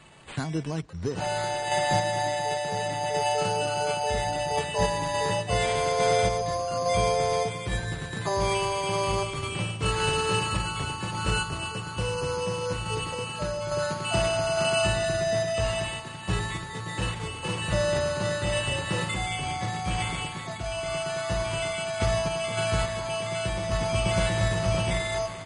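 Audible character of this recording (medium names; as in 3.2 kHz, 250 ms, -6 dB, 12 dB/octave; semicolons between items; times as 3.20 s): random-step tremolo; aliases and images of a low sample rate 5.6 kHz, jitter 0%; MP3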